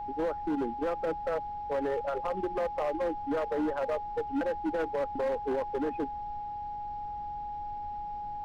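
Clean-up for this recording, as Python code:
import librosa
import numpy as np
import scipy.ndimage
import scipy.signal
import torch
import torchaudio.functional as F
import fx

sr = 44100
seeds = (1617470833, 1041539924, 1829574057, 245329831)

y = fx.fix_declip(x, sr, threshold_db=-26.0)
y = fx.notch(y, sr, hz=830.0, q=30.0)
y = fx.noise_reduce(y, sr, print_start_s=6.4, print_end_s=6.9, reduce_db=30.0)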